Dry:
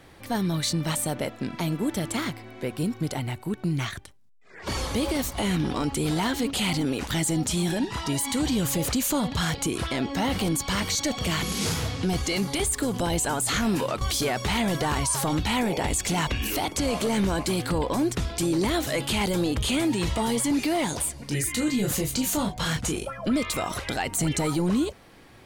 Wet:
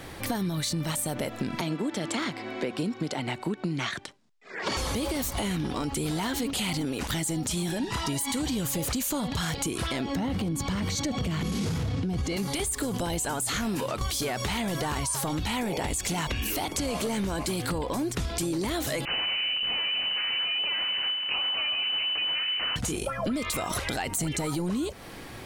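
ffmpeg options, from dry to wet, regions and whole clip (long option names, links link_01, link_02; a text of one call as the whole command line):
ffmpeg -i in.wav -filter_complex "[0:a]asettb=1/sr,asplit=3[link_01][link_02][link_03];[link_01]atrim=end=1.614[link_04];[link_02]atrim=start=1.61:end=4.77,asetpts=PTS-STARTPTS,afade=type=in:duration=0.004:curve=qsin,afade=type=out:start_time=3.156:duration=0.004:curve=qsin,acrossover=split=160 7300:gain=0.0708 1 0.0708[link_05][link_06][link_07];[link_05][link_06][link_07]amix=inputs=3:normalize=0,bandreject=frequency=6000:width=30[link_08];[link_03]atrim=start=4.766[link_09];[link_04][link_08]acrossfade=duration=0.004:curve1=hsin:curve2=qsin[link_10];[link_10][link_09]acrossfade=duration=0.004:curve1=qsin:curve2=hsin,asettb=1/sr,asplit=3[link_11][link_12][link_13];[link_11]atrim=end=10.154[link_14];[link_12]atrim=start=10.15:end=12.37,asetpts=PTS-STARTPTS,afade=type=in:duration=0.004:curve=qsin,afade=type=out:start_time=2.216:duration=0.004:curve=qsin,lowpass=frequency=4000:poles=1,equalizer=frequency=140:width=0.4:gain=10.5[link_15];[link_13]atrim=start=12.366[link_16];[link_14][link_15]acrossfade=duration=0.004:curve1=hsin:curve2=qsin[link_17];[link_17][link_16]acrossfade=duration=0.004:curve1=qsin:curve2=hsin,asettb=1/sr,asplit=3[link_18][link_19][link_20];[link_18]atrim=end=19.054[link_21];[link_19]atrim=start=19.05:end=22.76,asetpts=PTS-STARTPTS,afade=type=in:duration=0.004:curve=qsin,afade=type=out:start_time=3.706:duration=0.004:curve=qsin,asplit=8[link_22][link_23][link_24][link_25][link_26][link_27][link_28][link_29];[link_23]adelay=85,afreqshift=-130,volume=-9dB[link_30];[link_24]adelay=170,afreqshift=-260,volume=-13.7dB[link_31];[link_25]adelay=255,afreqshift=-390,volume=-18.5dB[link_32];[link_26]adelay=340,afreqshift=-520,volume=-23.2dB[link_33];[link_27]adelay=425,afreqshift=-650,volume=-27.9dB[link_34];[link_28]adelay=510,afreqshift=-780,volume=-32.7dB[link_35];[link_29]adelay=595,afreqshift=-910,volume=-37.4dB[link_36];[link_22][link_30][link_31][link_32][link_33][link_34][link_35][link_36]amix=inputs=8:normalize=0,atrim=end_sample=163611,aeval=exprs='abs(val(0))':channel_layout=same,lowpass=frequency=2600:width_type=q:width=0.5098,lowpass=frequency=2600:width_type=q:width=0.6013,lowpass=frequency=2600:width_type=q:width=0.9,lowpass=frequency=2600:width_type=q:width=2.563,afreqshift=-3000[link_37];[link_20]atrim=start=22.756[link_38];[link_21][link_37]acrossfade=duration=0.004:curve1=hsin:curve2=qsin[link_39];[link_39][link_38]acrossfade=duration=0.004:curve1=qsin:curve2=hsin,highshelf=frequency=6900:gain=4,alimiter=limit=-21.5dB:level=0:latency=1:release=40,acompressor=threshold=-36dB:ratio=6,volume=9dB" out.wav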